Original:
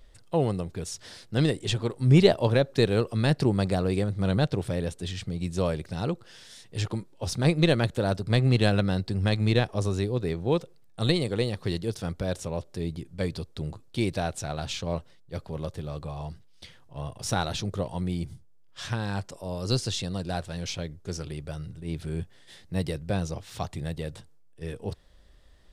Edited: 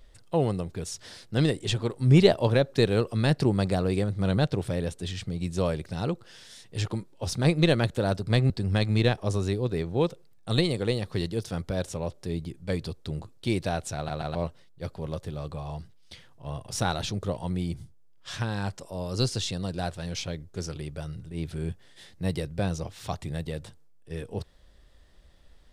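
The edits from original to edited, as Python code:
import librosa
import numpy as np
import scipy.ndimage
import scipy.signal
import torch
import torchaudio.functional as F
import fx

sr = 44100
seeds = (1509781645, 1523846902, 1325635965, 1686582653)

y = fx.edit(x, sr, fx.cut(start_s=8.5, length_s=0.51),
    fx.stutter_over(start_s=14.47, slice_s=0.13, count=3), tone=tone)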